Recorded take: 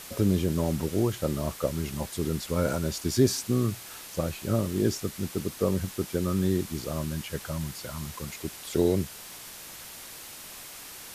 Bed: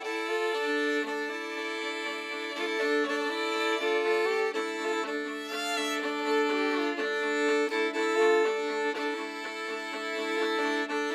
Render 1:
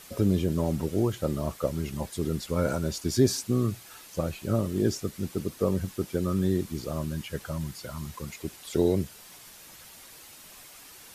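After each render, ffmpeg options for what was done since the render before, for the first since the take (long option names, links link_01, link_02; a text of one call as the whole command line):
ffmpeg -i in.wav -af "afftdn=noise_reduction=7:noise_floor=-44" out.wav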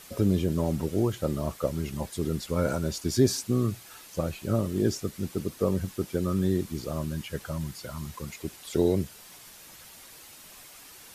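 ffmpeg -i in.wav -af anull out.wav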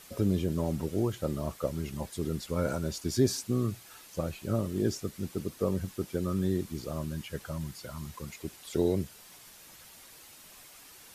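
ffmpeg -i in.wav -af "volume=-3.5dB" out.wav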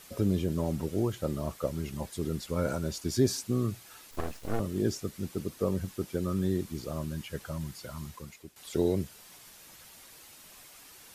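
ffmpeg -i in.wav -filter_complex "[0:a]asettb=1/sr,asplit=3[link_01][link_02][link_03];[link_01]atrim=end=4.114[link_04];[link_02]atrim=start=4.11:end=4.6,asetpts=PTS-STARTPTS,afade=type=in:duration=0.004:curve=qsin,afade=type=out:start_time=0.486:duration=0.004:curve=qsin,aeval=exprs='abs(val(0))':channel_layout=same[link_05];[link_03]atrim=start=4.596[link_06];[link_04][link_05]acrossfade=duration=0.004:curve1=hsin:curve2=qsin[link_07];[link_07][link_06]acrossfade=duration=0.004:curve1=qsin:curve2=hsin,asplit=2[link_08][link_09];[link_08]atrim=end=8.56,asetpts=PTS-STARTPTS,afade=type=out:start_time=8.02:duration=0.54:silence=0.16788[link_10];[link_09]atrim=start=8.56,asetpts=PTS-STARTPTS,afade=type=in:duration=0.004:curve=hsin:silence=0.16788[link_11];[link_10][link_11]concat=n=2:v=0:a=1" out.wav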